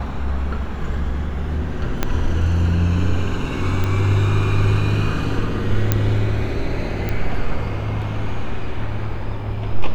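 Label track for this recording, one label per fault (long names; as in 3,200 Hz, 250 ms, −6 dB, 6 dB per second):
2.030000	2.030000	click −4 dBFS
3.840000	3.840000	click −10 dBFS
5.920000	5.920000	click −2 dBFS
7.090000	7.090000	click −11 dBFS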